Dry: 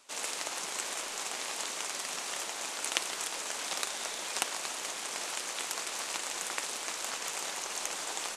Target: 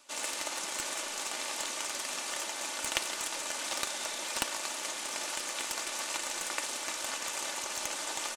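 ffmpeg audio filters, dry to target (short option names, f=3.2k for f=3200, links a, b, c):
-filter_complex "[0:a]aecho=1:1:3.4:0.44,acrossover=split=2900[a][b];[b]aeval=exprs='clip(val(0),-1,0.0316)':c=same[c];[a][c]amix=inputs=2:normalize=0"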